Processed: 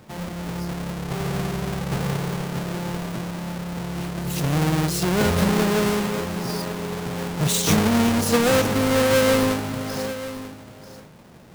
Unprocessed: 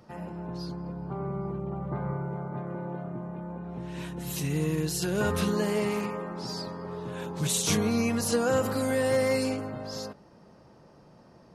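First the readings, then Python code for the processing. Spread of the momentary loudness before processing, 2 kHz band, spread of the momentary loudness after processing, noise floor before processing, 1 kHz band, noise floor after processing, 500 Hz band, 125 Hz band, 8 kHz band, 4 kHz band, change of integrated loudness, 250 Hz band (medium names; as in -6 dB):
12 LU, +9.0 dB, 12 LU, -55 dBFS, +8.5 dB, -45 dBFS, +6.0 dB, +8.0 dB, +5.5 dB, +8.5 dB, +7.5 dB, +8.0 dB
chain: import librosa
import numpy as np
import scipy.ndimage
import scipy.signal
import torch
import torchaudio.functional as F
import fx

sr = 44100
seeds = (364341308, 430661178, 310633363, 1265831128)

y = fx.halfwave_hold(x, sr)
y = y + 10.0 ** (-13.5 / 20.0) * np.pad(y, (int(940 * sr / 1000.0), 0))[:len(y)]
y = F.gain(torch.from_numpy(y), 2.5).numpy()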